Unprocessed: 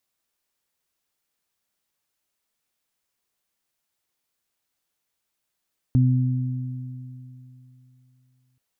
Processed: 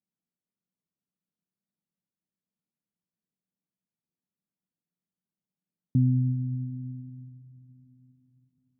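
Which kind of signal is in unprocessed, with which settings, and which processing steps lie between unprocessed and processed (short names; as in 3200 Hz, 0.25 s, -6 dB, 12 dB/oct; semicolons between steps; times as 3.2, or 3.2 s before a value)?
additive tone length 2.63 s, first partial 127 Hz, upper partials -6.5 dB, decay 3.05 s, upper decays 2.74 s, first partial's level -14 dB
band-pass 190 Hz, Q 1.7; bell 180 Hz +8 dB 0.39 oct; digital reverb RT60 4.9 s, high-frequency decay 0.9×, pre-delay 35 ms, DRR 12.5 dB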